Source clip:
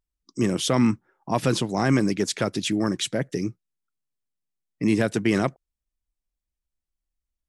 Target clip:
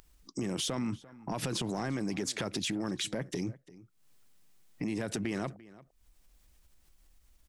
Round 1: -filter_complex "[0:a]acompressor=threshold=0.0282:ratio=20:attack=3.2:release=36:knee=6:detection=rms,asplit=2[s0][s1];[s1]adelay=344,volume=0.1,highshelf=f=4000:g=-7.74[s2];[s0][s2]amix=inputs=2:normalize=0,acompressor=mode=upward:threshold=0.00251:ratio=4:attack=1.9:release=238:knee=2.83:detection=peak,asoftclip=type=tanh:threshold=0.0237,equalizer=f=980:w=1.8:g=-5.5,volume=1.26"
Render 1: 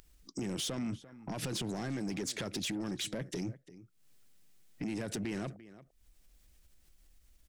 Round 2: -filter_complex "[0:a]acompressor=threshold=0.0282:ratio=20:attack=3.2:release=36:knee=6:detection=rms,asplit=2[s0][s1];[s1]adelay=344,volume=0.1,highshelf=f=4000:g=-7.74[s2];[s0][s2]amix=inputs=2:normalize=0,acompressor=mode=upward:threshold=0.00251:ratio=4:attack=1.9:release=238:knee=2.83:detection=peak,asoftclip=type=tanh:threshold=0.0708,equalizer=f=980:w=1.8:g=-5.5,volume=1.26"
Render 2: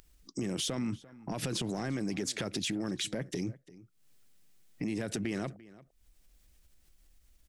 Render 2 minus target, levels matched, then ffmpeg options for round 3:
1 kHz band -3.0 dB
-filter_complex "[0:a]acompressor=threshold=0.0282:ratio=20:attack=3.2:release=36:knee=6:detection=rms,asplit=2[s0][s1];[s1]adelay=344,volume=0.1,highshelf=f=4000:g=-7.74[s2];[s0][s2]amix=inputs=2:normalize=0,acompressor=mode=upward:threshold=0.00251:ratio=4:attack=1.9:release=238:knee=2.83:detection=peak,asoftclip=type=tanh:threshold=0.0708,volume=1.26"

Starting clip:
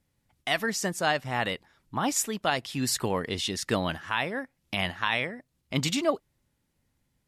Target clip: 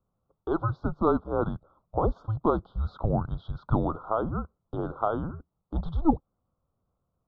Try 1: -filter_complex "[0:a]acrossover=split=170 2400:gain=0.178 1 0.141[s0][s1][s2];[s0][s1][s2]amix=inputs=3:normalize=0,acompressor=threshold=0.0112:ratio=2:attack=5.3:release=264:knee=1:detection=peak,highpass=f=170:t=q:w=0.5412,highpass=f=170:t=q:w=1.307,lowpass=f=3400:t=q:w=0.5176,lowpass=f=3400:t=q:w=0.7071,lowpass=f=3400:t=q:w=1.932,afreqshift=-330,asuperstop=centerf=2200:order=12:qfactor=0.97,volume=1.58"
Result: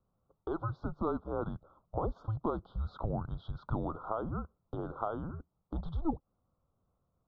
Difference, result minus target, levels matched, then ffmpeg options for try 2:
compression: peak gain reduction +12 dB
-filter_complex "[0:a]acrossover=split=170 2400:gain=0.178 1 0.141[s0][s1][s2];[s0][s1][s2]amix=inputs=3:normalize=0,highpass=f=170:t=q:w=0.5412,highpass=f=170:t=q:w=1.307,lowpass=f=3400:t=q:w=0.5176,lowpass=f=3400:t=q:w=0.7071,lowpass=f=3400:t=q:w=1.932,afreqshift=-330,asuperstop=centerf=2200:order=12:qfactor=0.97,volume=1.58"

